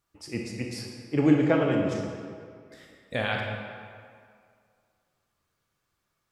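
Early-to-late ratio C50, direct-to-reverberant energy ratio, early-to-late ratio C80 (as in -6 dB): 1.5 dB, 0.0 dB, 3.0 dB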